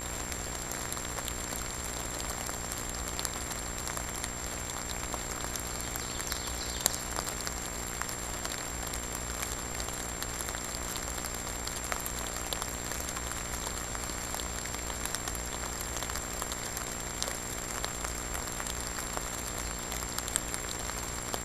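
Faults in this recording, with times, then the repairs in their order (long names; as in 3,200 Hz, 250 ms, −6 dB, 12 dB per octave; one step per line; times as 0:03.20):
mains buzz 60 Hz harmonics 39 −42 dBFS
surface crackle 57 per second −43 dBFS
whistle 7,400 Hz −40 dBFS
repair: click removal
hum removal 60 Hz, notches 39
notch filter 7,400 Hz, Q 30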